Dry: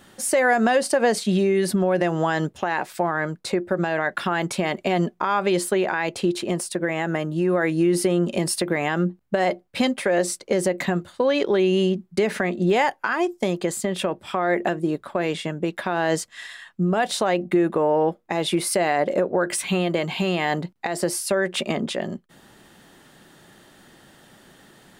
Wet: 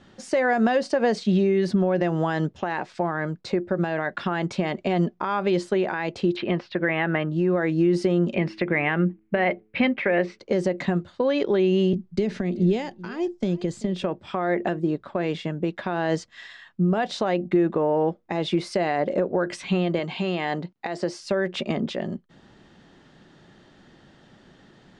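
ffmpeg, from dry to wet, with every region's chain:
-filter_complex "[0:a]asettb=1/sr,asplit=3[a][b][c];[a]atrim=end=6.364[d];[b]atrim=start=6.36:end=7.29,asetpts=PTS-STARTPTS,afade=t=in:d=0.004:c=qsin,afade=t=out:st=0.926:d=0.004:c=qsin,lowpass=f=3.7k:w=0.5412,lowpass=f=3.7k:w=1.3066,equalizer=f=2k:t=o:w=2.2:g=8.5[e];[c]atrim=start=7.286[f];[d][e]acrossfade=d=0.004:c1=hsin:c2=qsin[g];[g][f]acrossfade=d=0.004:c1=qsin:c2=hsin,asettb=1/sr,asplit=3[h][i][j];[h]atrim=end=8.344[k];[i]atrim=start=8.34:end=10.39,asetpts=PTS-STARTPTS,afade=t=in:d=0.004:c=qsin,afade=t=out:st=2.046:d=0.004:c=qsin,lowpass=f=2.3k:t=q:w=3.2,bandreject=f=108:t=h:w=4,bandreject=f=216:t=h:w=4,bandreject=f=324:t=h:w=4,bandreject=f=432:t=h:w=4[l];[j]atrim=start=10.386[m];[k][l]acrossfade=d=0.004:c1=hsin:c2=qsin[n];[n][m]acrossfade=d=0.004:c1=qsin:c2=hsin,asettb=1/sr,asplit=3[o][p][q];[o]atrim=end=11.934[r];[p]atrim=start=11.93:end=14.04,asetpts=PTS-STARTPTS,afade=t=in:d=0.004:c=qsin,afade=t=out:st=2.106:d=0.004:c=qsin,lowshelf=f=84:g=10,acrossover=split=450|3000[s][t][u];[t]acompressor=threshold=-41dB:ratio=2.5:attack=3.2:release=140:knee=2.83:detection=peak[v];[s][v][u]amix=inputs=3:normalize=0,aecho=1:1:386:0.106,atrim=end_sample=93051[w];[q]atrim=start=14.036[x];[r][w]acrossfade=d=0.004:c1=hsin:c2=qsin[y];[y][x]acrossfade=d=0.004:c1=qsin:c2=hsin,asettb=1/sr,asplit=3[z][aa][ab];[z]atrim=end=19.994[ac];[aa]atrim=start=19.99:end=21.23,asetpts=PTS-STARTPTS,afade=t=in:d=0.004:c=qsin,afade=t=out:st=1.236:d=0.004:c=qsin,lowpass=9.7k,lowshelf=f=130:g=-11.5[ad];[ab]atrim=start=21.226[ae];[ac][ad]acrossfade=d=0.004:c1=hsin:c2=qsin[af];[af][ae]acrossfade=d=0.004:c1=qsin:c2=hsin,lowpass=f=6k:w=0.5412,lowpass=f=6k:w=1.3066,lowshelf=f=410:g=7,volume=-5dB"

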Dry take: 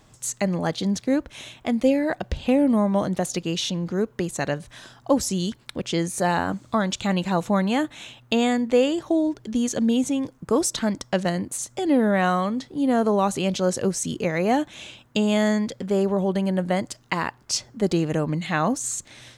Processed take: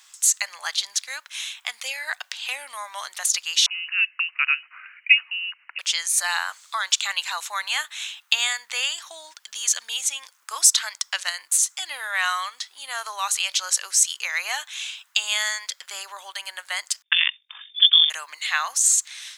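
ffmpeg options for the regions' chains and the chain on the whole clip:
-filter_complex "[0:a]asettb=1/sr,asplit=3[a][b][c];[a]atrim=end=3.664[d];[b]atrim=start=3.66:end=5.79,asetpts=PTS-STARTPTS,afade=t=in:d=0.004:c=qsin,afade=t=out:st=2.126:d=0.004:c=qsin,highpass=480,lowpass=f=2.6k:t=q:w=0.5098,lowpass=f=2.6k:t=q:w=0.6013,lowpass=f=2.6k:t=q:w=0.9,lowpass=f=2.6k:t=q:w=2.563,afreqshift=-3100[e];[c]atrim=start=5.786[f];[d][e]acrossfade=d=0.004:c1=hsin:c2=qsin[g];[g][f]acrossfade=d=0.004:c1=qsin:c2=hsin,asettb=1/sr,asplit=3[h][i][j];[h]atrim=end=17.024[k];[i]atrim=start=17.02:end=18.1,asetpts=PTS-STARTPTS,afade=t=in:d=0.004:c=qsin,afade=t=out:st=1.076:d=0.004:c=qsin,agate=range=-33dB:threshold=-45dB:ratio=3:release=100:detection=peak,lowpass=f=3.1k:t=q:w=0.5098,lowpass=f=3.1k:t=q:w=0.6013,lowpass=f=3.1k:t=q:w=0.9,lowpass=f=3.1k:t=q:w=2.563,afreqshift=-3700,tremolo=f=47:d=0.571[l];[j]atrim=start=18.096[m];[k][l]acrossfade=d=0.004:c1=hsin:c2=qsin[n];[n][m]acrossfade=d=0.004:c1=qsin:c2=hsin,highpass=f=1k:w=0.5412,highpass=f=1k:w=1.3066,tiltshelf=f=1.3k:g=-9,volume=2.5dB"

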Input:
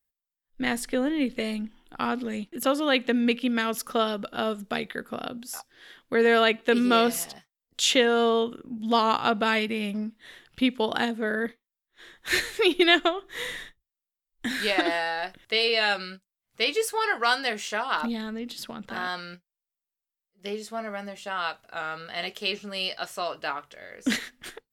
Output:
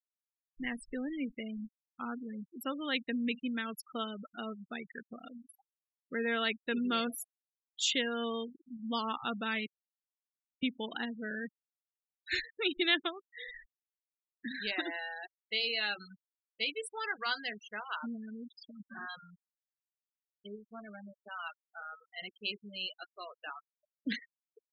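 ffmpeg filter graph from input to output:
-filter_complex "[0:a]asettb=1/sr,asplit=3[a][b][c];[a]atrim=end=9.664[d];[b]atrim=start=9.66:end=10.63,asetpts=PTS-STARTPTS,afade=t=in:d=0.004:c=qsin,afade=t=out:st=0.966:d=0.004:c=qsin,highpass=f=360:w=0.5412,highpass=f=360:w=1.3066,lowshelf=f=460:g=-9.5,acompressor=threshold=-38dB:ratio=8:attack=3.2:release=140:knee=1:detection=peak[e];[c]atrim=start=10.626[f];[d][e]acrossfade=d=0.004:c1=hsin:c2=qsin[g];[g][f]acrossfade=d=0.004:c1=qsin:c2=hsin,afftfilt=real='re*gte(hypot(re,im),0.0631)':imag='im*gte(hypot(re,im),0.0631)':win_size=1024:overlap=0.75,equalizer=f=620:w=0.72:g=-10.5,volume=-6.5dB"

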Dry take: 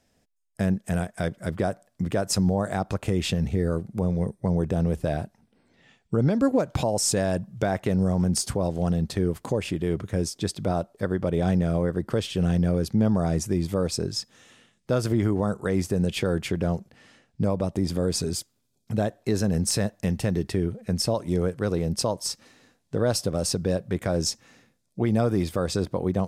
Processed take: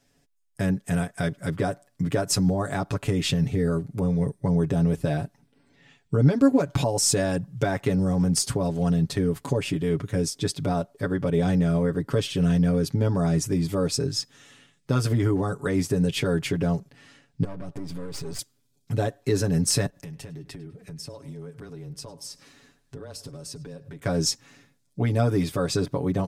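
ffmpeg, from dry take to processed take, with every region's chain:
-filter_complex "[0:a]asettb=1/sr,asplit=3[a][b][c];[a]atrim=end=17.444[d];[b]atrim=start=17.44:end=18.39,asetpts=PTS-STARTPTS,afade=t=in:d=0.004:c=qsin,afade=t=out:st=0.946:d=0.004:c=qsin,aeval=exprs='if(lt(val(0),0),0.251*val(0),val(0))':c=same,highshelf=f=4k:g=-8,acompressor=threshold=-31dB:ratio=10:attack=3.2:release=140:knee=1:detection=peak[e];[c]atrim=start=18.386[f];[d][e]acrossfade=d=0.004:c1=hsin:c2=qsin[g];[g][f]acrossfade=d=0.004:c1=qsin:c2=hsin,asettb=1/sr,asplit=3[h][i][j];[h]atrim=end=19.864[k];[i]atrim=start=19.86:end=24.05,asetpts=PTS-STARTPTS,afade=t=in:d=0.004:c=qsin,afade=t=out:st=4.186:d=0.004:c=qsin,acompressor=threshold=-40dB:ratio=4:attack=3.2:release=140:knee=1:detection=peak,afreqshift=-19,asplit=2[l][m];[m]adelay=102,lowpass=f=4.2k:p=1,volume=-18dB,asplit=2[n][o];[o]adelay=102,lowpass=f=4.2k:p=1,volume=0.5,asplit=2[p][q];[q]adelay=102,lowpass=f=4.2k:p=1,volume=0.5,asplit=2[r][s];[s]adelay=102,lowpass=f=4.2k:p=1,volume=0.5[t];[l][n][p][r][t]amix=inputs=5:normalize=0,atrim=end_sample=184779[u];[j]atrim=start=24.046[v];[k][u]acrossfade=d=0.004:c1=hsin:c2=qsin[w];[w][v]acrossfade=d=0.004:c1=qsin:c2=hsin,equalizer=f=660:w=1.5:g=-4,aecho=1:1:7.1:0.84"

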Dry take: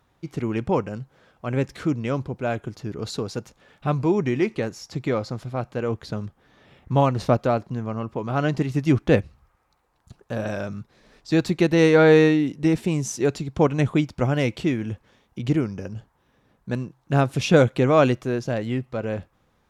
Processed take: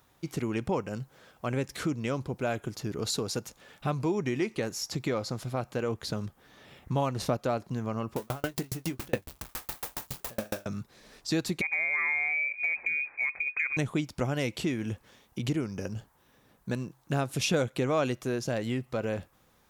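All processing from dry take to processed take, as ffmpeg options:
-filter_complex "[0:a]asettb=1/sr,asplit=3[a][b][c];[a]atrim=end=8.164[d];[b]atrim=start=8.16:end=10.66,asetpts=PTS-STARTPTS,afade=t=in:d=0.004:c=qsin,afade=t=out:st=2.496:d=0.004:c=qsin,aeval=exprs='val(0)+0.5*0.0355*sgn(val(0))':c=same,asplit=2[e][f];[f]adelay=23,volume=-7.5dB[g];[e][g]amix=inputs=2:normalize=0,atrim=end_sample=110250,aeval=exprs='val(0)*pow(10,-40*if(lt(mod(7.2*n/s,1),2*abs(7.2)/1000),1-mod(7.2*n/s,1)/(2*abs(7.2)/1000),(mod(7.2*n/s,1)-2*abs(7.2)/1000)/(1-2*abs(7.2)/1000))/20)':c=same[h];[c]atrim=start=10.656[i];[d][h]acrossfade=d=0.004:c1=hsin:c2=qsin[j];[j][i]acrossfade=d=0.004:c1=qsin:c2=hsin,asettb=1/sr,asplit=3[k][l][m];[k]atrim=end=11.614[n];[l]atrim=start=11.61:end=13.77,asetpts=PTS-STARTPTS,afade=t=in:d=0.004:c=qsin,afade=t=out:st=2.156:d=0.004:c=qsin,lowpass=f=2.2k:t=q:w=0.5098,lowpass=f=2.2k:t=q:w=0.6013,lowpass=f=2.2k:t=q:w=0.9,lowpass=f=2.2k:t=q:w=2.563,afreqshift=-2600,acompressor=threshold=-27dB:ratio=2.5:attack=3.2:release=140:knee=1:detection=peak[o];[m]atrim=start=13.766[p];[n][o]acrossfade=d=0.004:c1=hsin:c2=qsin[q];[q][p]acrossfade=d=0.004:c1=qsin:c2=hsin,aemphasis=mode=production:type=50kf,acompressor=threshold=-28dB:ratio=2.5,lowshelf=f=160:g=-3.5"

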